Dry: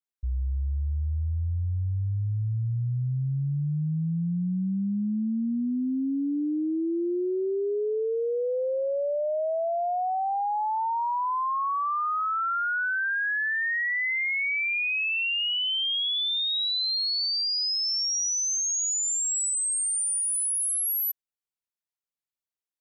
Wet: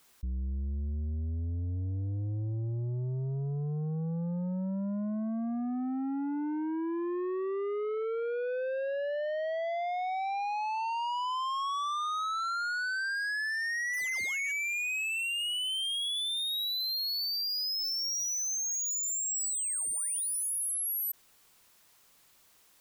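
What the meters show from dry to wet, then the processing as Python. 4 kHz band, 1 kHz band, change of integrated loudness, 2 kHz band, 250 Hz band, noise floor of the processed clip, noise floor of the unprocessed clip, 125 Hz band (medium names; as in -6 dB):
-5.5 dB, -5.5 dB, -5.5 dB, -5.5 dB, -5.5 dB, -63 dBFS, under -85 dBFS, -6.0 dB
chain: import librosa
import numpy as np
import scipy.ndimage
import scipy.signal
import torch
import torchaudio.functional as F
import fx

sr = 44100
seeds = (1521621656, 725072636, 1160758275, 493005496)

y = fx.peak_eq(x, sr, hz=1100.0, db=3.0, octaves=0.38)
y = fx.spec_paint(y, sr, seeds[0], shape='fall', start_s=13.93, length_s=0.59, low_hz=1600.0, high_hz=11000.0, level_db=-39.0)
y = 10.0 ** (-31.5 / 20.0) * np.tanh(y / 10.0 ** (-31.5 / 20.0))
y = fx.env_flatten(y, sr, amount_pct=50)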